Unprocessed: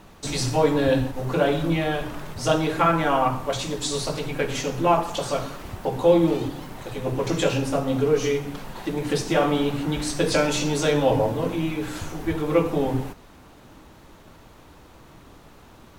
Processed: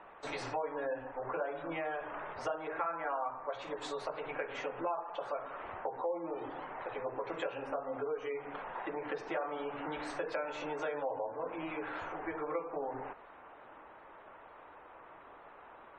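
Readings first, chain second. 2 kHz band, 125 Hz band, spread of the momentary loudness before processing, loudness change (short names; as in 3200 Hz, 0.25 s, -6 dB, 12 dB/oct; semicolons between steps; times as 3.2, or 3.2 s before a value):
-11.0 dB, -28.5 dB, 10 LU, -15.5 dB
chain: three-band isolator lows -24 dB, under 470 Hz, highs -23 dB, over 2200 Hz; spectral gate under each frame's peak -30 dB strong; compressor 4:1, threshold -37 dBFS, peak gain reduction 17.5 dB; gain +1 dB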